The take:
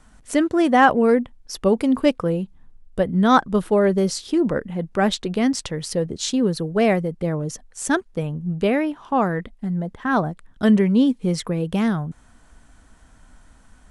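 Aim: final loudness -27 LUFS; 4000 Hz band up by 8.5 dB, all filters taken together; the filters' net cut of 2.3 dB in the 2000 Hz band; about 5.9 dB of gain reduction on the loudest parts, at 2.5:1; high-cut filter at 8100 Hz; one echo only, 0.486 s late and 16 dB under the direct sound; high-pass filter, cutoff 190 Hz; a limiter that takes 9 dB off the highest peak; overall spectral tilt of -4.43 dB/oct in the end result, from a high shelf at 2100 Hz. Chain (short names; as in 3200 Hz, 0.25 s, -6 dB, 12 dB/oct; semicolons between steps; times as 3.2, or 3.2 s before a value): HPF 190 Hz; LPF 8100 Hz; bell 2000 Hz -8.5 dB; high shelf 2100 Hz +8.5 dB; bell 4000 Hz +5 dB; compressor 2.5:1, threshold -19 dBFS; limiter -15 dBFS; echo 0.486 s -16 dB; gain -1.5 dB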